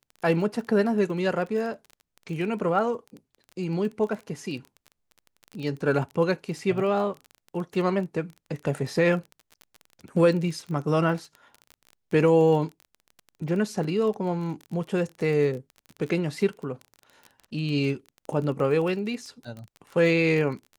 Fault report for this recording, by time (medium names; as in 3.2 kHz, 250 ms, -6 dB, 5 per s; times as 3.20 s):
crackle 22 per s -33 dBFS